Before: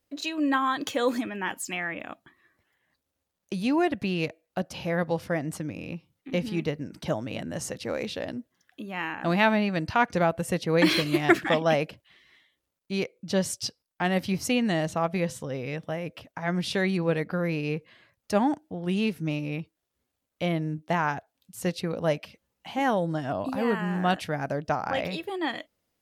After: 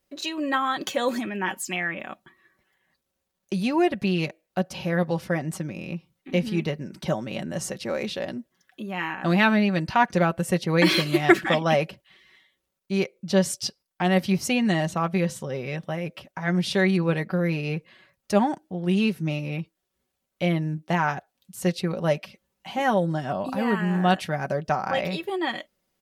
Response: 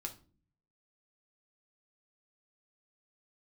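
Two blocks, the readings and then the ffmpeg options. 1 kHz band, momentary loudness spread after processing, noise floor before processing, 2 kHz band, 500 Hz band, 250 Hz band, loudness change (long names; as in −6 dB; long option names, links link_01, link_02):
+2.5 dB, 12 LU, −82 dBFS, +3.0 dB, +2.0 dB, +3.0 dB, +3.0 dB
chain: -af "aecho=1:1:5.3:0.52,volume=1.5dB"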